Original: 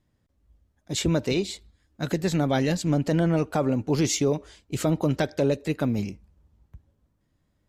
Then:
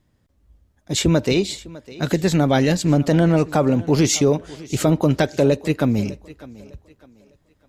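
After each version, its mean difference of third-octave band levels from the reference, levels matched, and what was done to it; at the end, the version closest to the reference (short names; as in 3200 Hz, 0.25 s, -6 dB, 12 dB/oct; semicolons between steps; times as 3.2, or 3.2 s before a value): 1.0 dB: thinning echo 0.604 s, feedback 33%, high-pass 160 Hz, level -19 dB; gain +6.5 dB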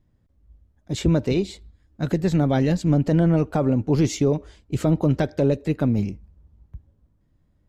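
4.0 dB: tilt -2 dB/oct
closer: first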